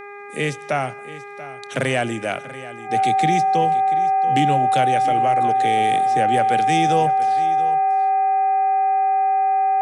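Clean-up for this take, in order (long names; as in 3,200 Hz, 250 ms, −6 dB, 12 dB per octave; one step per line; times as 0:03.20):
clipped peaks rebuilt −8 dBFS
hum removal 406.3 Hz, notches 6
notch filter 770 Hz, Q 30
echo removal 685 ms −15.5 dB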